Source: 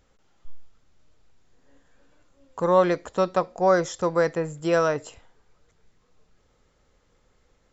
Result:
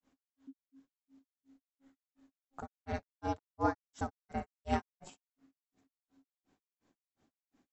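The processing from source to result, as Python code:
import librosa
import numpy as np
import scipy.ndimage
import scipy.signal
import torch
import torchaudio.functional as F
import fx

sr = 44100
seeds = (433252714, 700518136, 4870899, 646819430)

y = x * np.sin(2.0 * np.pi * 270.0 * np.arange(len(x)) / sr)
y = fx.room_early_taps(y, sr, ms=(59, 70), db=(-5.0, -7.0))
y = fx.granulator(y, sr, seeds[0], grain_ms=180.0, per_s=2.8, spray_ms=28.0, spread_st=0)
y = F.gain(torch.from_numpy(y), -7.5).numpy()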